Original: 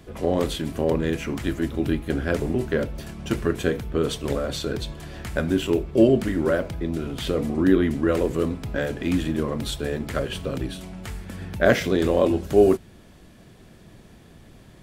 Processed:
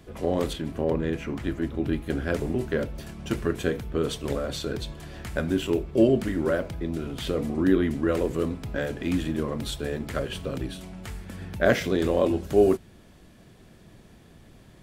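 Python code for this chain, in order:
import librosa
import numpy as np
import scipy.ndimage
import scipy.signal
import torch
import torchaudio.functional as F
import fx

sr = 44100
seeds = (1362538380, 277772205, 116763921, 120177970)

y = fx.high_shelf(x, sr, hz=4000.0, db=-10.0, at=(0.53, 1.93))
y = y * librosa.db_to_amplitude(-3.0)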